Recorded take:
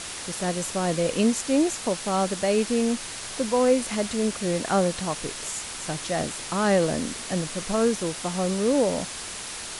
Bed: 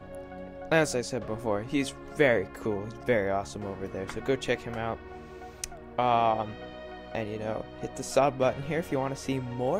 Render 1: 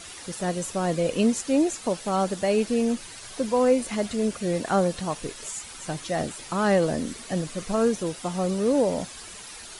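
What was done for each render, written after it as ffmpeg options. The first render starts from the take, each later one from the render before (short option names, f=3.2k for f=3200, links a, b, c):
-af "afftdn=nr=10:nf=-36"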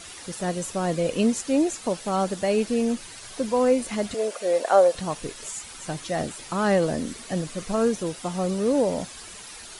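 -filter_complex "[0:a]asettb=1/sr,asplit=3[a][b][c];[a]atrim=end=4.144[d];[b]atrim=start=4.14:end=4.95,asetpts=PTS-STARTPTS,afade=t=in:d=0.004:c=qsin,afade=t=out:st=0.806:d=0.004:c=qsin,highpass=f=560:t=q:w=2.8[e];[c]atrim=start=4.946[f];[d][e]acrossfade=d=0.004:c1=hsin:c2=qsin[g];[g][f]acrossfade=d=0.004:c1=qsin:c2=hsin"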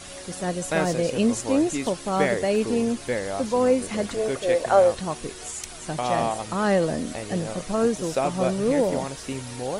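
-filter_complex "[1:a]volume=-1.5dB[a];[0:a][a]amix=inputs=2:normalize=0"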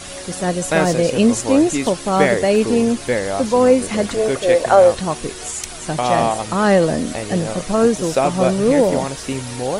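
-af "volume=7.5dB,alimiter=limit=-1dB:level=0:latency=1"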